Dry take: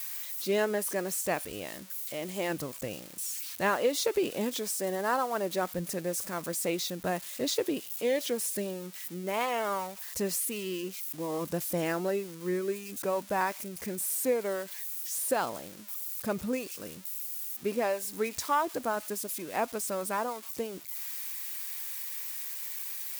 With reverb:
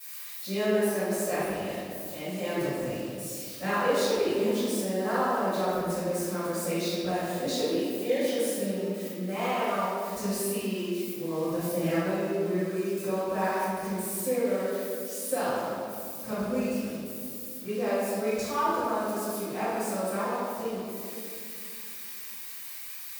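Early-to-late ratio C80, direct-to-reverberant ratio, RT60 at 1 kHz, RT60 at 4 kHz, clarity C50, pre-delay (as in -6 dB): -1.0 dB, -17.5 dB, 2.0 s, 1.2 s, -4.5 dB, 3 ms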